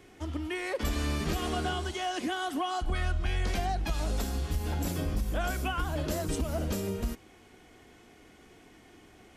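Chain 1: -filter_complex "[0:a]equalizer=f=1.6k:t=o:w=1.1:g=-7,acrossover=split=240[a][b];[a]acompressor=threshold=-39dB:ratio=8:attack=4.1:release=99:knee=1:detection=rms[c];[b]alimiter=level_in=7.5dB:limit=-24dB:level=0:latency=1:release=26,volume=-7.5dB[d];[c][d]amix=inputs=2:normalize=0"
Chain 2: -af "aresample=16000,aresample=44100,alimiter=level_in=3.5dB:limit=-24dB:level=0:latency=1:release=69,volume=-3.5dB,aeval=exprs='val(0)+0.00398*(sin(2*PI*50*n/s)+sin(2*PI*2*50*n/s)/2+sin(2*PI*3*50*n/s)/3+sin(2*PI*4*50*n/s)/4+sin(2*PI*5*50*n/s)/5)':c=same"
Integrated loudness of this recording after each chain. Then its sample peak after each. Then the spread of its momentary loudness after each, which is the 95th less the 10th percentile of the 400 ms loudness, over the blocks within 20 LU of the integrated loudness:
-38.5, -36.5 LUFS; -27.0, -26.5 dBFS; 19, 16 LU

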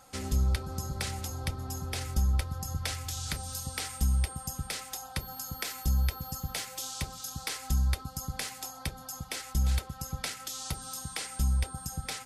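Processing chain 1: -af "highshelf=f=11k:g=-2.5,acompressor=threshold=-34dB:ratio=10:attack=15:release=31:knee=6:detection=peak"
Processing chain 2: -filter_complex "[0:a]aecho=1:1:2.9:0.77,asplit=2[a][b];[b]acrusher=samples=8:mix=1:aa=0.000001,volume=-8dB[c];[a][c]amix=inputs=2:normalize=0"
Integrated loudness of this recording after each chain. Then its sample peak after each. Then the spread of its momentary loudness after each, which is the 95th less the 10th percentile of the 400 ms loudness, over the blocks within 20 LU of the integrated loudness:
-38.0, -28.5 LUFS; -19.0, -11.0 dBFS; 3, 11 LU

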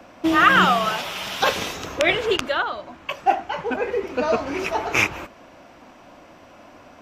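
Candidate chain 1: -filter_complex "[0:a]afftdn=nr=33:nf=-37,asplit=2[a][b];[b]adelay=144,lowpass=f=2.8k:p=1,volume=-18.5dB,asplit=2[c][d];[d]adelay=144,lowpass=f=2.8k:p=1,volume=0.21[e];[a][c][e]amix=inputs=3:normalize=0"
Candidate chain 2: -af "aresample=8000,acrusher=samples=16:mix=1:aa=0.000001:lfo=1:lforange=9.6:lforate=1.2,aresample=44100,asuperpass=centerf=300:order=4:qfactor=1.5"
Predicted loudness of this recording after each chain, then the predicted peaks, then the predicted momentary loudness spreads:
-21.0, -29.0 LUFS; -2.5, -6.0 dBFS; 13, 14 LU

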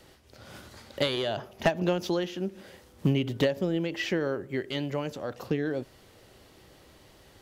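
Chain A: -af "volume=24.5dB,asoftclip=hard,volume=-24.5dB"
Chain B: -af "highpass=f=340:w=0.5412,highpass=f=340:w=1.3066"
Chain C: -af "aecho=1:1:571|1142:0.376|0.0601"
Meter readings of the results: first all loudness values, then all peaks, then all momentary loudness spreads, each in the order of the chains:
-32.0, -32.0, -30.0 LUFS; -24.5, -11.0, -13.0 dBFS; 17, 19, 15 LU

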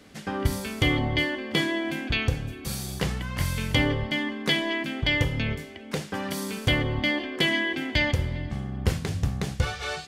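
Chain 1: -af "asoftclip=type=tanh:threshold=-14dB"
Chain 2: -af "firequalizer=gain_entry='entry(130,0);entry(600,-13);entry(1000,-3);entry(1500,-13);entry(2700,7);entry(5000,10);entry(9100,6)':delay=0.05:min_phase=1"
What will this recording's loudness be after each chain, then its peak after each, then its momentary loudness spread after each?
-28.0, -24.5 LUFS; -14.5, -5.5 dBFS; 7, 10 LU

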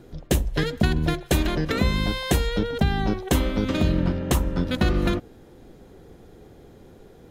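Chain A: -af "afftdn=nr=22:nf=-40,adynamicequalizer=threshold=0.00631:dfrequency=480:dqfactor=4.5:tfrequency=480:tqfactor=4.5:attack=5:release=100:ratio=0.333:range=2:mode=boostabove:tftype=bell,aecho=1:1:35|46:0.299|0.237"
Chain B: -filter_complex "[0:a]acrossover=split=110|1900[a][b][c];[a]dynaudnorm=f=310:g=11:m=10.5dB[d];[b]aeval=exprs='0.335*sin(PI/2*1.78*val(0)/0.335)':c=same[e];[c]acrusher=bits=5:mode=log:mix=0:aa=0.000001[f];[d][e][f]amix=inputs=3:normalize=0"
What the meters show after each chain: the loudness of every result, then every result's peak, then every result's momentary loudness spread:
-23.0, -16.5 LUFS; -7.5, -1.0 dBFS; 4, 5 LU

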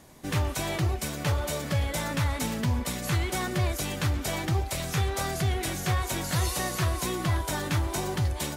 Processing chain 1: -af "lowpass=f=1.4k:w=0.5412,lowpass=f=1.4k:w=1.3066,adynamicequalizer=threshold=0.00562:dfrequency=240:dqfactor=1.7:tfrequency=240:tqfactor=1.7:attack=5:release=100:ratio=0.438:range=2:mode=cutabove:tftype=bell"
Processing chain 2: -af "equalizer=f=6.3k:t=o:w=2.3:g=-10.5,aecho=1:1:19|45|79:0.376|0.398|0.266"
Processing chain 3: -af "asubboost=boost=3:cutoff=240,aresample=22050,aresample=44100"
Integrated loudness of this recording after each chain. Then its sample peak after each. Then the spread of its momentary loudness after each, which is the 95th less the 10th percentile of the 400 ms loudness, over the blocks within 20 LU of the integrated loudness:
-31.0, -28.5, -23.0 LUFS; -17.0, -13.5, -9.0 dBFS; 2, 2, 5 LU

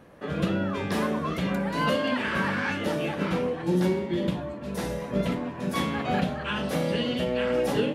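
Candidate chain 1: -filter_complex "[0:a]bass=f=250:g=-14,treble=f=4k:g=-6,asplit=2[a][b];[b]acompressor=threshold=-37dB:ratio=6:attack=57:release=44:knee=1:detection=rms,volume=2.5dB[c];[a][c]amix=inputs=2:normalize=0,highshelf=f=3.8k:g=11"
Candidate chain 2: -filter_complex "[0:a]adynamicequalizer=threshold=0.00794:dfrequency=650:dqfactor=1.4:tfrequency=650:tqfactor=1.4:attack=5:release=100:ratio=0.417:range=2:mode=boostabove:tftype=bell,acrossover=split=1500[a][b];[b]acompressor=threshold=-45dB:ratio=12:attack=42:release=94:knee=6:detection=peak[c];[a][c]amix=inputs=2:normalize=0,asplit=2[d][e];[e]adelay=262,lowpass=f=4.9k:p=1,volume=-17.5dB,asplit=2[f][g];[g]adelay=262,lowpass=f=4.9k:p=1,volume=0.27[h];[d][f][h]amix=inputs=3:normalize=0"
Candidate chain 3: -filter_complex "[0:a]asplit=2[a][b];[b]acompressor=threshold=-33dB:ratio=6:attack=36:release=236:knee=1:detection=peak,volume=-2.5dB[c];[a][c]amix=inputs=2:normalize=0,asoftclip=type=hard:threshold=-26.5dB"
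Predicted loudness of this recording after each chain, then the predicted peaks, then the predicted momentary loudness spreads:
-24.5, -26.5, -29.5 LUFS; -10.5, -12.0, -26.5 dBFS; 6, 6, 3 LU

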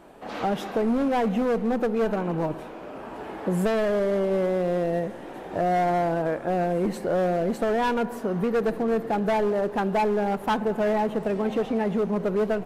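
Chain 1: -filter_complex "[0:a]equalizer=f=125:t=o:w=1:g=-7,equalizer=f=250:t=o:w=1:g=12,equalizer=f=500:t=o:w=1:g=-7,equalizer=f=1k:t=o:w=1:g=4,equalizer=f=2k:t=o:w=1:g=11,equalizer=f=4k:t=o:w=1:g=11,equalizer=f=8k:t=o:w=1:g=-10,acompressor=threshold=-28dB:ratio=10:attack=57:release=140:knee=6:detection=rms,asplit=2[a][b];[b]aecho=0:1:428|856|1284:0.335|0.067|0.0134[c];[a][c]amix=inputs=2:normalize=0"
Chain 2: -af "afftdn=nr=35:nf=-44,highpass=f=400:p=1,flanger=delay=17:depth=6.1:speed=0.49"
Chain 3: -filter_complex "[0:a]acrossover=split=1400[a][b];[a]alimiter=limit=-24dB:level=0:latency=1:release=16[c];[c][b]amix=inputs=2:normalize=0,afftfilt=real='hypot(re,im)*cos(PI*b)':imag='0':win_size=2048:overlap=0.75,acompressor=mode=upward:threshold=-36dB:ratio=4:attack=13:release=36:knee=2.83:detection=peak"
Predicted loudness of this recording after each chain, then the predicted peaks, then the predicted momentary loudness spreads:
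-29.5, -31.0, -33.0 LUFS; -14.0, -17.0, -13.0 dBFS; 3, 9, 5 LU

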